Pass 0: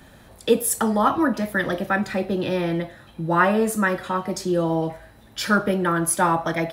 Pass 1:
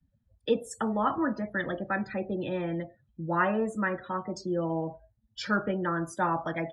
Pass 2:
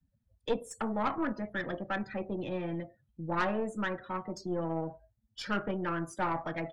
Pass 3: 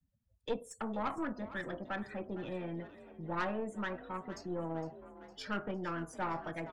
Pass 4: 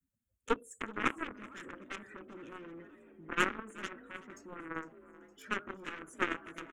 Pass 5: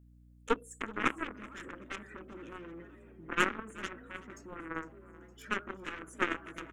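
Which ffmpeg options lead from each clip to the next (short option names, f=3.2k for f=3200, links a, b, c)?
-af "afftdn=nr=35:nf=-34,lowpass=f=6.8k:w=0.5412,lowpass=f=6.8k:w=1.3066,volume=-8dB"
-af "aeval=exprs='(tanh(11.2*val(0)+0.6)-tanh(0.6))/11.2':c=same,volume=-1dB"
-filter_complex "[0:a]asplit=7[a][b][c][d][e][f][g];[b]adelay=459,afreqshift=43,volume=-15.5dB[h];[c]adelay=918,afreqshift=86,volume=-20.4dB[i];[d]adelay=1377,afreqshift=129,volume=-25.3dB[j];[e]adelay=1836,afreqshift=172,volume=-30.1dB[k];[f]adelay=2295,afreqshift=215,volume=-35dB[l];[g]adelay=2754,afreqshift=258,volume=-39.9dB[m];[a][h][i][j][k][l][m]amix=inputs=7:normalize=0,volume=-5dB"
-af "aeval=exprs='0.0668*(cos(1*acos(clip(val(0)/0.0668,-1,1)))-cos(1*PI/2))+0.0266*(cos(3*acos(clip(val(0)/0.0668,-1,1)))-cos(3*PI/2))':c=same,firequalizer=gain_entry='entry(160,0);entry(280,12);entry(720,-4);entry(1300,10);entry(2900,5);entry(4500,-10);entry(6700,11)':delay=0.05:min_phase=1,aecho=1:1:380|760:0.0891|0.0267,volume=3.5dB"
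-af "aeval=exprs='val(0)+0.00112*(sin(2*PI*60*n/s)+sin(2*PI*2*60*n/s)/2+sin(2*PI*3*60*n/s)/3+sin(2*PI*4*60*n/s)/4+sin(2*PI*5*60*n/s)/5)':c=same,volume=1.5dB"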